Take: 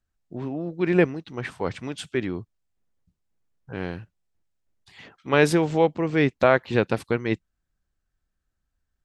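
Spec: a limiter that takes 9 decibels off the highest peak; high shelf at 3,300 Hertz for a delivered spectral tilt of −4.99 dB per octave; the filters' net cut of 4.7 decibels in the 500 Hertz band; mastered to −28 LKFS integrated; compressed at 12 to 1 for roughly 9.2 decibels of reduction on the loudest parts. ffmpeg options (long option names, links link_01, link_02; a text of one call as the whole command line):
ffmpeg -i in.wav -af "equalizer=frequency=500:width_type=o:gain=-6,highshelf=frequency=3300:gain=5,acompressor=threshold=-24dB:ratio=12,volume=6dB,alimiter=limit=-14.5dB:level=0:latency=1" out.wav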